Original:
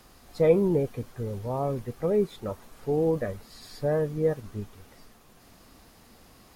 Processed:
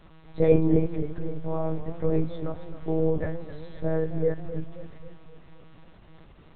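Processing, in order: low shelf 220 Hz +8.5 dB; resonator 170 Hz, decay 0.31 s, harmonics all, mix 70%; monotone LPC vocoder at 8 kHz 160 Hz; warbling echo 0.266 s, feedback 50%, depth 111 cents, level -13.5 dB; gain +6.5 dB

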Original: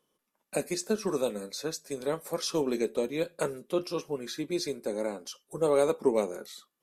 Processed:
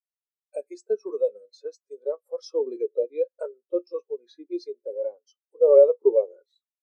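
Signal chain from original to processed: HPF 480 Hz 12 dB/oct; in parallel at -2 dB: limiter -26 dBFS, peak gain reduction 11 dB; on the sum: spectral expander 2.5:1; gain +7.5 dB

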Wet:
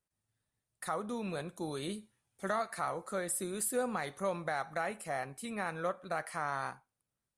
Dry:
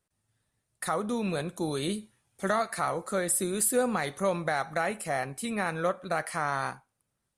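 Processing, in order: dynamic EQ 1000 Hz, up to +3 dB, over -41 dBFS, Q 0.71; gain -8.5 dB

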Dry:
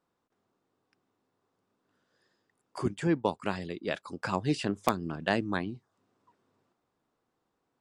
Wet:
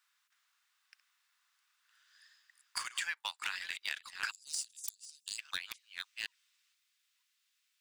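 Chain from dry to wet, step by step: reverse delay 0.482 s, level -13 dB; inverse Chebyshev high-pass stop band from 270 Hz, stop band 80 dB, from 4.3 s stop band from 1100 Hz, from 5.38 s stop band from 380 Hz; sample leveller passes 1; compressor 12:1, threshold -47 dBFS, peak gain reduction 18.5 dB; hard clip -39.5 dBFS, distortion -13 dB; gain +14 dB

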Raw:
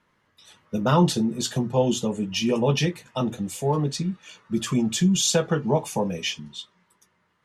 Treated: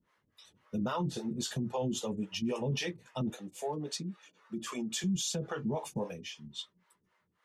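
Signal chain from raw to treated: harmonic tremolo 3.7 Hz, depth 100%, crossover 410 Hz; limiter -22.5 dBFS, peak gain reduction 11 dB; 3.3–5.04 HPF 250 Hz 12 dB/oct; 6.12–6.55 compressor 6:1, threshold -38 dBFS, peak gain reduction 8 dB; gain -3 dB

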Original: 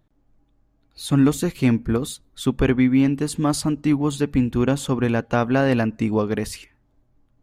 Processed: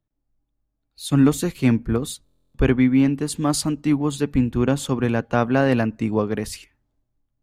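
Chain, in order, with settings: stuck buffer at 2.24, samples 1024, times 12; three-band expander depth 40%

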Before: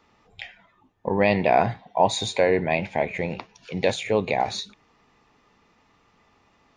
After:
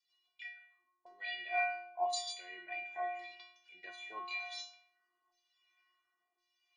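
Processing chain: high shelf 4100 Hz +9 dB; notches 50/100/150/200/250/300/350 Hz; rotary speaker horn 6.3 Hz, later 0.8 Hz, at 1.36; LFO band-pass saw down 0.94 Hz 840–4700 Hz; metallic resonator 350 Hz, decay 0.76 s, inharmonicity 0.008; gain +13.5 dB

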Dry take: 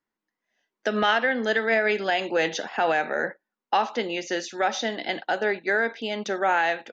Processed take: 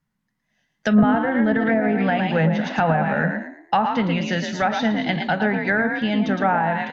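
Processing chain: resonant low shelf 230 Hz +13.5 dB, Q 3; frequency-shifting echo 0.113 s, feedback 33%, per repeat +45 Hz, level -6 dB; treble ducked by the level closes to 900 Hz, closed at -17 dBFS; gain +4.5 dB

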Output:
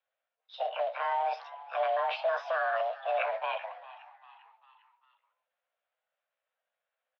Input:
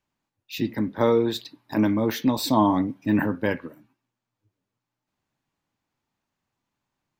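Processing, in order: delay-line pitch shifter +4.5 st; limiter -17 dBFS, peak gain reduction 8 dB; transient shaper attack +1 dB, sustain +8 dB; short-mantissa float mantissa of 2-bit; mistuned SSB +320 Hz 200–3200 Hz; frequency-shifting echo 0.399 s, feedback 50%, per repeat +78 Hz, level -18 dB; gain -4.5 dB

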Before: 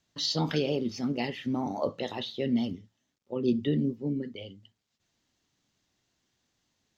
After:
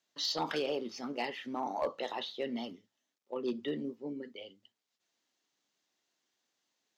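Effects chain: HPF 360 Hz 12 dB/oct; dynamic EQ 1100 Hz, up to +7 dB, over -50 dBFS, Q 0.95; in parallel at -7 dB: wavefolder -22.5 dBFS; on the sum: gain -7.5 dB

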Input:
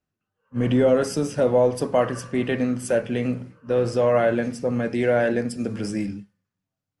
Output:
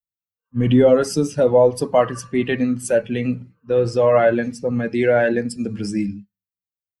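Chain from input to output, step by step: per-bin expansion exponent 1.5; gain +6.5 dB

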